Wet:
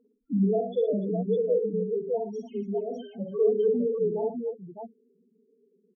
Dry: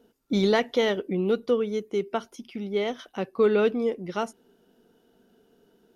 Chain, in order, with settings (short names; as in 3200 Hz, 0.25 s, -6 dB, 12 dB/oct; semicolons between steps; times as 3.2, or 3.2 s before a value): dynamic EQ 380 Hz, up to -6 dB, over -39 dBFS, Q 7.3; loudest bins only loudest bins 2; tapped delay 46/62/115/293/607 ms -6/-6/-9.5/-16.5/-3.5 dB